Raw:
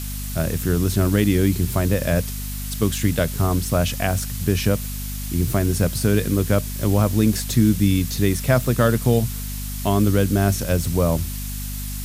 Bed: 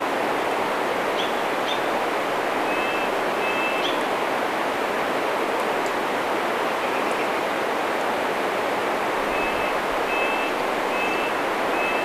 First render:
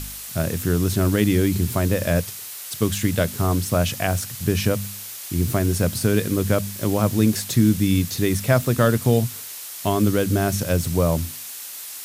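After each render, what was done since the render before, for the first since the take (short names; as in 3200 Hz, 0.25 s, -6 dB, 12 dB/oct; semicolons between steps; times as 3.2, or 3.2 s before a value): de-hum 50 Hz, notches 5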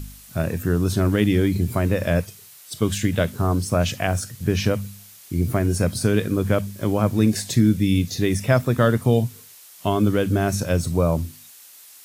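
noise print and reduce 11 dB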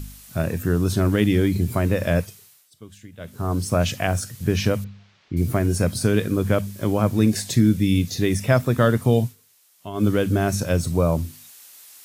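2.23–3.66 dip -21.5 dB, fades 0.48 s; 4.84–5.37 Gaussian blur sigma 2.4 samples; 9.24–10.05 dip -12.5 dB, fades 0.12 s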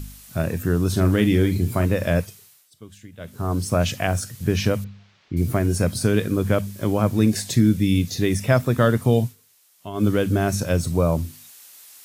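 0.89–1.86 doubler 43 ms -10.5 dB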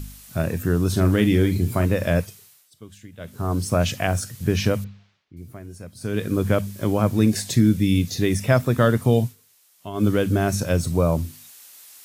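4.85–6.36 dip -18 dB, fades 0.40 s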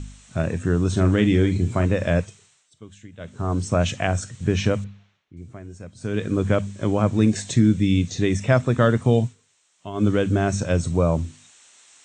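steep low-pass 8500 Hz 96 dB/oct; bell 4800 Hz -10 dB 0.27 oct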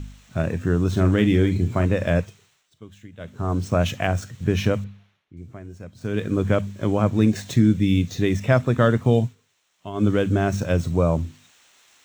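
median filter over 5 samples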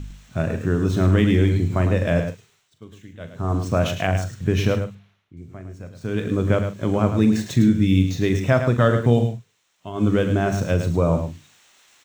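doubler 42 ms -11.5 dB; echo 0.106 s -8.5 dB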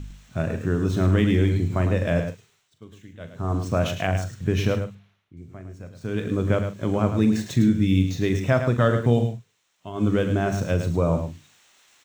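gain -2.5 dB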